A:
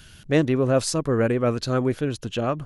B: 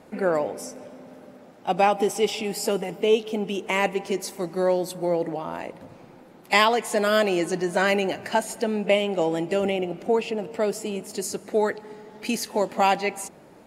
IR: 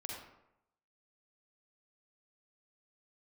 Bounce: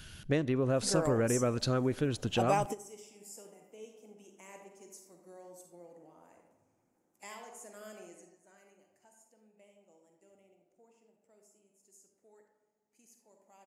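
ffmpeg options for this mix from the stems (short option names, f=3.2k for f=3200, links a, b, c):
-filter_complex "[0:a]acompressor=threshold=-23dB:ratio=10,volume=-3dB,asplit=3[a][b][c];[b]volume=-20dB[d];[1:a]highshelf=f=5.2k:t=q:w=3:g=9,adelay=700,volume=-11dB,afade=t=out:st=8.03:d=0.27:silence=0.237137,asplit=2[e][f];[f]volume=-18.5dB[g];[c]apad=whole_len=633324[h];[e][h]sidechaingate=range=-27dB:threshold=-48dB:ratio=16:detection=peak[i];[2:a]atrim=start_sample=2205[j];[d][g]amix=inputs=2:normalize=0[k];[k][j]afir=irnorm=-1:irlink=0[l];[a][i][l]amix=inputs=3:normalize=0"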